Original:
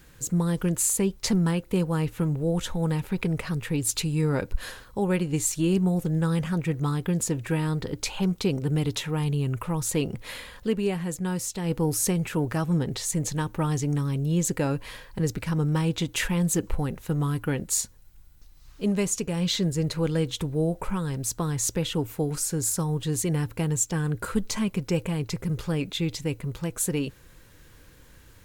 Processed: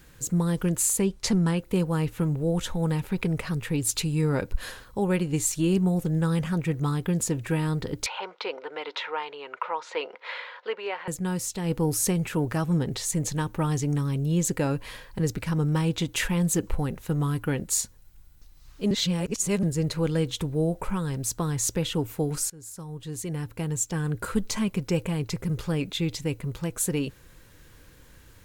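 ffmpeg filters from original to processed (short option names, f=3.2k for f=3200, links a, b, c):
-filter_complex "[0:a]asettb=1/sr,asplit=3[a][b][c];[a]atrim=end=1.024[d];[b]atrim=start=1.02:end=1.59,asetpts=PTS-STARTPTS,afade=t=in:d=0.004:c=qsin,afade=t=out:st=0.566:d=0.004:c=qsin,lowpass=11k[e];[c]atrim=start=1.586[f];[d][e]acrossfade=d=0.004:c1=hsin:c2=qsin[g];[g][f]acrossfade=d=0.004:c1=qsin:c2=hsin,asettb=1/sr,asplit=3[h][i][j];[h]atrim=end=8.064[k];[i]atrim=start=8.06:end=11.08,asetpts=PTS-STARTPTS,afade=t=in:d=0.004:c=qsin,afade=t=out:st=3.016:d=0.004:c=qsin,highpass=f=490:w=0.5412,highpass=f=490:w=1.3066,equalizer=f=510:t=q:w=4:g=4,equalizer=f=950:t=q:w=4:g=8,equalizer=f=1.4k:t=q:w=4:g=7,equalizer=f=2.1k:t=q:w=4:g=5,lowpass=f=4.1k:w=0.5412,lowpass=f=4.1k:w=1.3066[l];[j]atrim=start=11.076[m];[k][l]acrossfade=d=0.004:c1=hsin:c2=qsin[n];[n][m]acrossfade=d=0.004:c1=qsin:c2=hsin,asplit=4[o][p][q][r];[o]atrim=end=18.912[s];[p]atrim=start=18.908:end=19.632,asetpts=PTS-STARTPTS,areverse[t];[q]atrim=start=19.628:end=22.5,asetpts=PTS-STARTPTS,afade=t=out:st=2.868:d=0.004:c=hsin:silence=0.0794328[u];[r]atrim=start=22.5,asetpts=PTS-STARTPTS,afade=t=in:d=1.8:silence=0.0794328[v];[s][t]acrossfade=d=0.004:c1=hsin:c2=hsin[w];[u][v]concat=n=2:v=0:a=1[x];[w][x]acrossfade=d=0.004:c1=hsin:c2=hsin"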